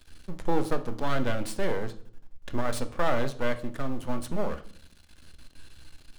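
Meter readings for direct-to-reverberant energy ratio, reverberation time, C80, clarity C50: 7.5 dB, 0.55 s, 19.0 dB, 15.0 dB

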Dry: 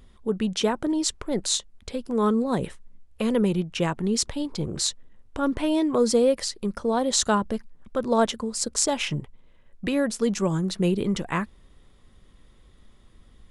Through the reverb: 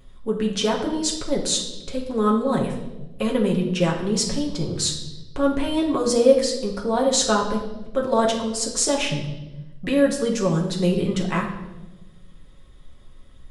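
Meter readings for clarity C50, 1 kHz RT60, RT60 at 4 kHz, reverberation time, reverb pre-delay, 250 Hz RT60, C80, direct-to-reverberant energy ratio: 6.5 dB, 0.90 s, 0.95 s, 1.1 s, 5 ms, 1.4 s, 9.5 dB, −1.5 dB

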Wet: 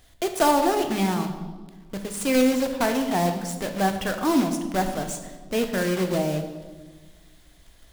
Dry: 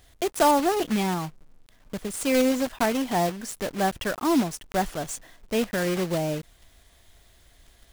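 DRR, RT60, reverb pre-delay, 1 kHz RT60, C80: 5.5 dB, 1.4 s, 3 ms, 1.3 s, 10.0 dB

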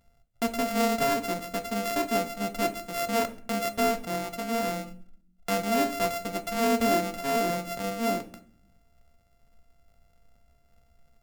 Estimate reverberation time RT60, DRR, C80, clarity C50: 0.50 s, 8.0 dB, 18.5 dB, 14.5 dB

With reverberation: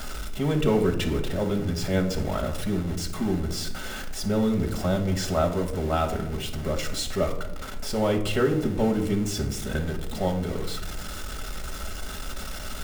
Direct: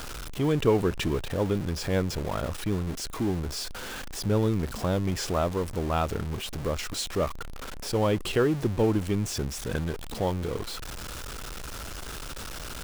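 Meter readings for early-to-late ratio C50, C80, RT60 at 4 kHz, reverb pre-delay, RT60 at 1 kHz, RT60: 9.5 dB, 13.0 dB, 0.45 s, 5 ms, 0.70 s, 0.85 s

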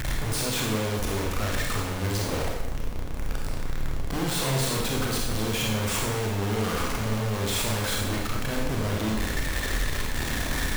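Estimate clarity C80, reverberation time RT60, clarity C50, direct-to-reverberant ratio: 4.0 dB, 0.95 s, 1.5 dB, −2.0 dB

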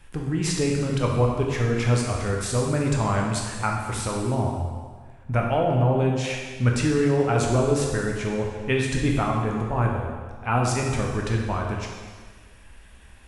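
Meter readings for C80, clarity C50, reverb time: 4.0 dB, 2.0 dB, 1.6 s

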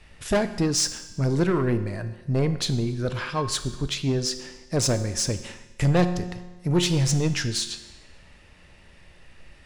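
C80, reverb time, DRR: 13.5 dB, 1.2 s, 9.5 dB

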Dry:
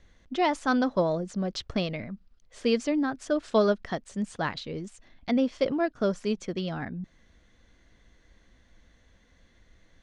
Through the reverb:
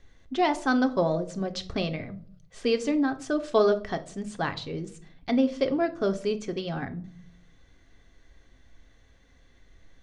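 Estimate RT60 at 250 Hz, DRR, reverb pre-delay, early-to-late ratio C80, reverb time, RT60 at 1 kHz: 0.80 s, 7.0 dB, 3 ms, 20.5 dB, 0.55 s, 0.45 s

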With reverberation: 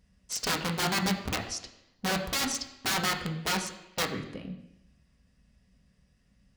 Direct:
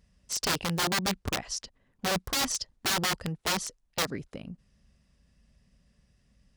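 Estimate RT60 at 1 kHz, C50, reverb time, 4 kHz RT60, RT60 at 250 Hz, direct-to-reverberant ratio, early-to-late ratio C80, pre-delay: 0.85 s, 9.0 dB, 0.85 s, 0.90 s, 0.85 s, 1.5 dB, 10.5 dB, 3 ms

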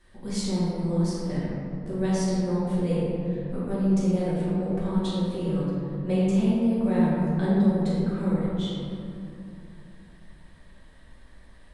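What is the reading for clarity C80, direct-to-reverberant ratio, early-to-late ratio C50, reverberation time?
−1.5 dB, −10.5 dB, −4.0 dB, 2.8 s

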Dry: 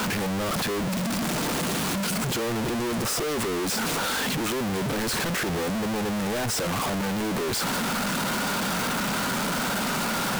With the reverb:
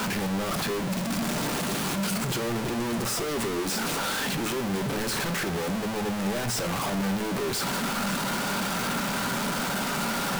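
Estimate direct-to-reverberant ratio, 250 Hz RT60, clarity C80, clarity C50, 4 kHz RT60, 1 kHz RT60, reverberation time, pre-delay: 7.5 dB, 0.85 s, 17.0 dB, 13.5 dB, 0.45 s, 0.60 s, 0.70 s, 5 ms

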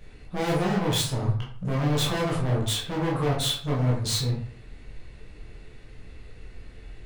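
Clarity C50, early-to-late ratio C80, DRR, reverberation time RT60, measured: 4.5 dB, 9.0 dB, −4.5 dB, 0.50 s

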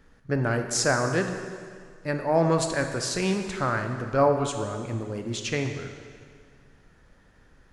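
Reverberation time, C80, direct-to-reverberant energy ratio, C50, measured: 2.0 s, 7.5 dB, 5.0 dB, 6.5 dB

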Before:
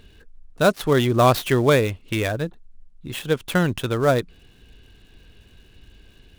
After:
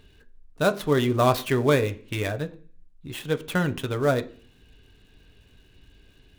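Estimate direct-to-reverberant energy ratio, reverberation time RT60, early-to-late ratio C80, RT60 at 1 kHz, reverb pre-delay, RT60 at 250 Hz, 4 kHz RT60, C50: 7.0 dB, 0.45 s, 22.0 dB, 0.40 s, 3 ms, 0.60 s, 0.45 s, 17.5 dB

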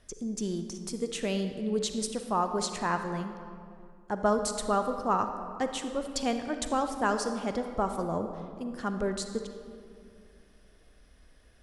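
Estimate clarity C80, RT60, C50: 8.5 dB, 2.4 s, 7.0 dB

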